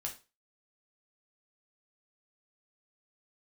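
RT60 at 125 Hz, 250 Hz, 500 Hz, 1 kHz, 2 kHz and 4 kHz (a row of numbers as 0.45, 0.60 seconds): 0.30, 0.30, 0.30, 0.30, 0.25, 0.30 seconds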